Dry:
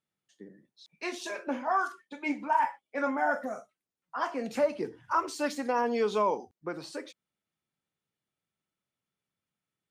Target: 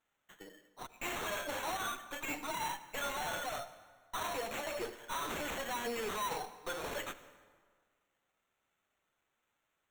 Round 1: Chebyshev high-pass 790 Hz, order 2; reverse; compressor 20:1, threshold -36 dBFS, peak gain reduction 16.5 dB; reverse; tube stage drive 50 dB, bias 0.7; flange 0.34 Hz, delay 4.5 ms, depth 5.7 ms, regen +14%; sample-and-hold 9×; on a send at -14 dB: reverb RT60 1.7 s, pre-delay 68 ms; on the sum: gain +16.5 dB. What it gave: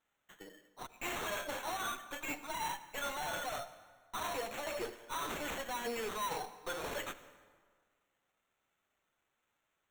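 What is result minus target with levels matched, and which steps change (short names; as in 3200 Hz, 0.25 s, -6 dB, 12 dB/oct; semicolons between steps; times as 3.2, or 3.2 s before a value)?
compressor: peak gain reduction +9.5 dB
change: compressor 20:1, threshold -26 dBFS, peak gain reduction 7 dB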